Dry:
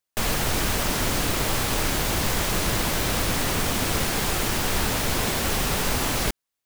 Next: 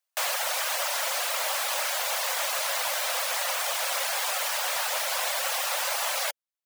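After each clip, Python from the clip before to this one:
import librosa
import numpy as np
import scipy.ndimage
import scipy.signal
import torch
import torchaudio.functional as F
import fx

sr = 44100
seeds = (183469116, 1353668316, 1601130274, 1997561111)

y = fx.dereverb_blind(x, sr, rt60_s=0.57)
y = scipy.signal.sosfilt(scipy.signal.butter(16, 520.0, 'highpass', fs=sr, output='sos'), y)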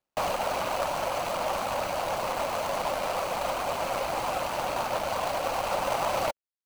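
y = scipy.ndimage.median_filter(x, 25, mode='constant')
y = fx.rider(y, sr, range_db=10, speed_s=2.0)
y = y * 10.0 ** (7.5 / 20.0)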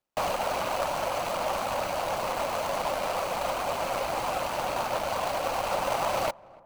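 y = fx.echo_filtered(x, sr, ms=290, feedback_pct=63, hz=1100.0, wet_db=-22.5)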